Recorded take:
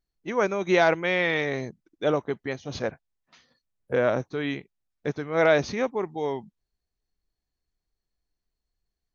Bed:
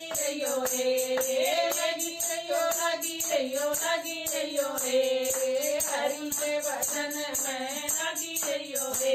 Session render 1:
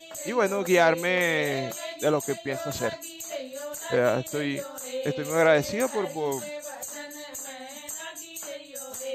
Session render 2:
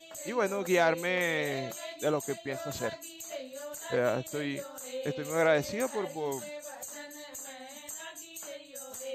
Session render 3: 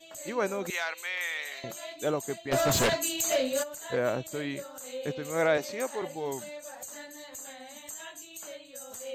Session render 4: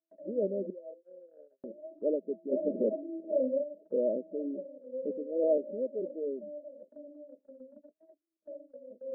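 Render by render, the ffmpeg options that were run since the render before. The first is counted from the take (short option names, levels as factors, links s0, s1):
-filter_complex "[1:a]volume=0.422[s0];[0:a][s0]amix=inputs=2:normalize=0"
-af "volume=0.531"
-filter_complex "[0:a]asettb=1/sr,asplit=3[s0][s1][s2];[s0]atrim=end=0.704[s3];[s1]atrim=start=0.7:end=1.64,asetpts=PTS-STARTPTS,afade=t=in:d=0.004:c=qsin,afade=t=out:st=0.936:d=0.004:c=qsin,highpass=1400[s4];[s2]atrim=start=1.636[s5];[s3][s4]acrossfade=d=0.004:c1=hsin:c2=qsin[s6];[s6][s5]acrossfade=d=0.004:c1=qsin:c2=hsin,asplit=3[s7][s8][s9];[s7]afade=t=out:st=2.51:d=0.02[s10];[s8]aeval=exprs='0.1*sin(PI/2*3.55*val(0)/0.1)':c=same,afade=t=in:st=2.51:d=0.02,afade=t=out:st=3.62:d=0.02[s11];[s9]afade=t=in:st=3.62:d=0.02[s12];[s10][s11][s12]amix=inputs=3:normalize=0,asettb=1/sr,asplit=3[s13][s14][s15];[s13]atrim=end=5.574[s16];[s14]atrim=start=5.57:end=6.02,asetpts=PTS-STARTPTS,afade=t=in:d=0.004:c=qsin,afade=t=out:st=0.446:d=0.004:c=qsin,highpass=300[s17];[s15]atrim=start=6.016[s18];[s16][s17]acrossfade=d=0.004:c1=hsin:c2=qsin[s19];[s19][s18]acrossfade=d=0.004:c1=qsin:c2=hsin"
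-af "afftfilt=real='re*between(b*sr/4096,180,650)':imag='im*between(b*sr/4096,180,650)':win_size=4096:overlap=0.75,agate=range=0.0178:threshold=0.00282:ratio=16:detection=peak"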